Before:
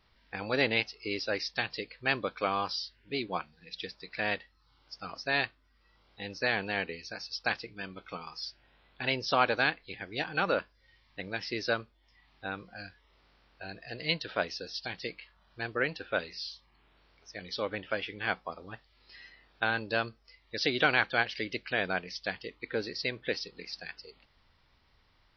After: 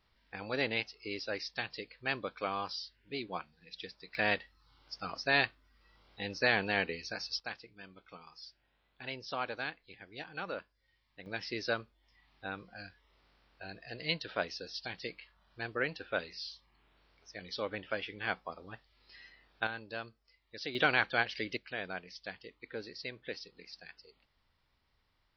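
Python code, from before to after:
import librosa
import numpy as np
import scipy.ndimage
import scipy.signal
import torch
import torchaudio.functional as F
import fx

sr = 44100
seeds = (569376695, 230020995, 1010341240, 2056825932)

y = fx.gain(x, sr, db=fx.steps((0.0, -5.5), (4.15, 1.0), (7.4, -11.0), (11.26, -3.5), (19.67, -11.0), (20.75, -2.5), (21.57, -9.0)))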